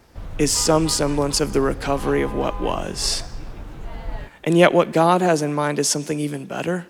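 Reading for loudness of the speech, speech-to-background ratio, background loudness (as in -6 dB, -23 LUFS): -20.0 LUFS, 15.0 dB, -35.0 LUFS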